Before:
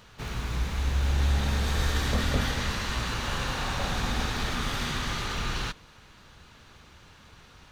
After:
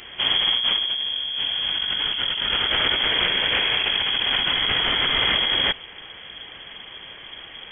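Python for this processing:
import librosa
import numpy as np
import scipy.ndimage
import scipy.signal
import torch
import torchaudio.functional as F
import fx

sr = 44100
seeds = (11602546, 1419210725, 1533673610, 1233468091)

y = fx.over_compress(x, sr, threshold_db=-32.0, ratio=-1.0)
y = fx.freq_invert(y, sr, carrier_hz=3300)
y = fx.notch(y, sr, hz=1300.0, q=9.9, at=(0.83, 1.58))
y = y * 10.0 ** (8.5 / 20.0)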